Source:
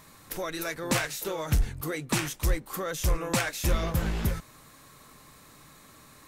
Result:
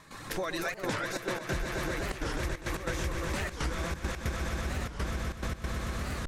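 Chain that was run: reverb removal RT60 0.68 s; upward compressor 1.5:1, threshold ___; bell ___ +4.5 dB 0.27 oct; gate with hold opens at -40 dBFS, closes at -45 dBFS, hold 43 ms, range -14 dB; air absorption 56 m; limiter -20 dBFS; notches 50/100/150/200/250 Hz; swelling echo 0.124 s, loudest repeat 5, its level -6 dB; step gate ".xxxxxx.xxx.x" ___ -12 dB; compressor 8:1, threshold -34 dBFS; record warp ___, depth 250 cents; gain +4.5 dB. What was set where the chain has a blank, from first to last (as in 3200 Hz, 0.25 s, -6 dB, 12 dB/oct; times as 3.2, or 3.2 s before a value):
-29 dBFS, 1700 Hz, 141 bpm, 45 rpm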